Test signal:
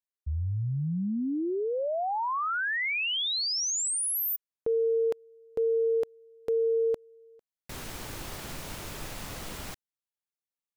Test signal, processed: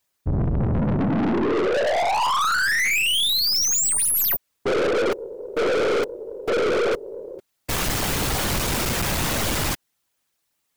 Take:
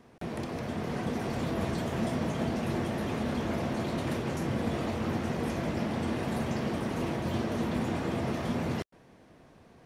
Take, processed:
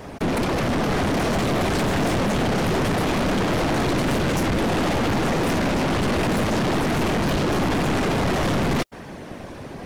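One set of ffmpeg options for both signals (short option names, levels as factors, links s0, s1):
-af "afftfilt=real='hypot(re,im)*cos(2*PI*random(0))':imag='hypot(re,im)*sin(2*PI*random(1))':win_size=512:overlap=0.75,apsyclip=22.4,aeval=exprs='(tanh(10*val(0)+0.25)-tanh(0.25))/10':c=same"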